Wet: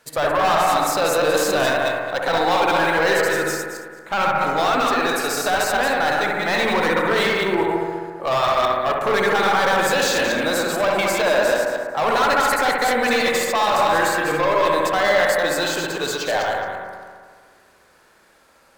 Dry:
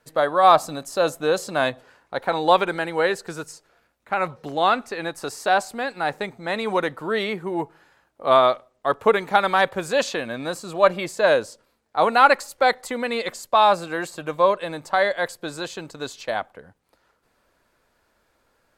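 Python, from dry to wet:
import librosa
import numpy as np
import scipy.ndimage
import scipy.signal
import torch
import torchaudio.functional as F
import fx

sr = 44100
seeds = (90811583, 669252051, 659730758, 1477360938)

p1 = fx.reverse_delay_fb(x, sr, ms=111, feedback_pct=41, wet_db=-4)
p2 = fx.tilt_eq(p1, sr, slope=2.0)
p3 = fx.over_compress(p2, sr, threshold_db=-21.0, ratio=-0.5)
p4 = p2 + (p3 * 10.0 ** (-0.5 / 20.0))
p5 = 10.0 ** (-16.5 / 20.0) * np.tanh(p4 / 10.0 ** (-16.5 / 20.0))
p6 = fx.echo_bbd(p5, sr, ms=66, stages=1024, feedback_pct=77, wet_db=-3.5)
y = np.interp(np.arange(len(p6)), np.arange(len(p6))[::2], p6[::2])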